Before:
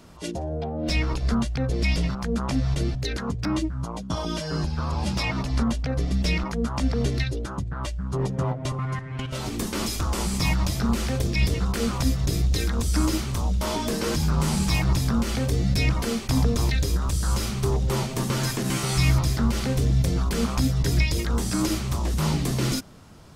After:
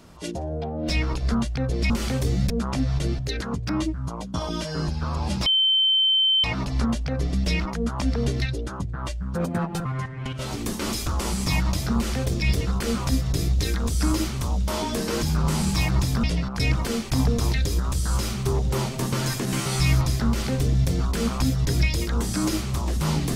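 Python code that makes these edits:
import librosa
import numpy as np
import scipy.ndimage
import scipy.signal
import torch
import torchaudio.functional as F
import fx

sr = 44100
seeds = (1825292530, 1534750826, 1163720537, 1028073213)

y = fx.edit(x, sr, fx.swap(start_s=1.9, length_s=0.36, other_s=15.17, other_length_s=0.6),
    fx.insert_tone(at_s=5.22, length_s=0.98, hz=3090.0, db=-16.5),
    fx.speed_span(start_s=8.13, length_s=0.65, speed=1.31), tone=tone)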